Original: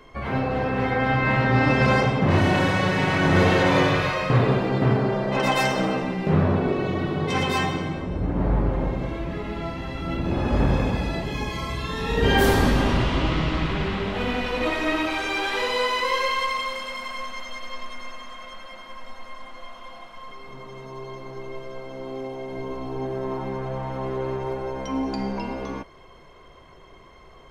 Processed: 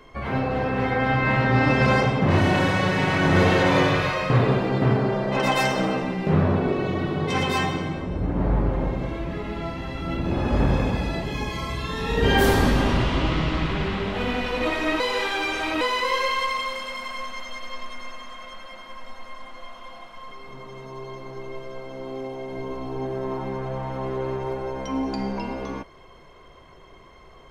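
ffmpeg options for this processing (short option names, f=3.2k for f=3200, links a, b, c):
-filter_complex "[0:a]asplit=3[a][b][c];[a]atrim=end=15.002[d];[b]atrim=start=14.998:end=15.812,asetpts=PTS-STARTPTS,areverse[e];[c]atrim=start=15.808[f];[d][e]acrossfade=d=0.004:c1=hsin:c2=hsin[g];[g][f]acrossfade=d=0.004:c1=hsin:c2=hsin"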